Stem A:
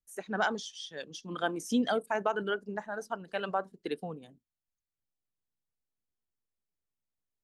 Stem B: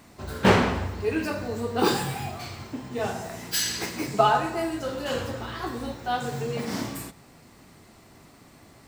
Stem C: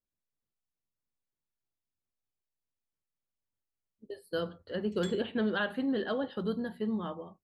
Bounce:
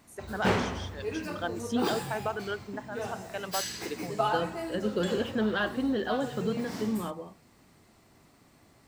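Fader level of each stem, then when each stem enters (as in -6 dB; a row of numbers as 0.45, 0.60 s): -2.5, -8.0, +2.0 dB; 0.00, 0.00, 0.00 s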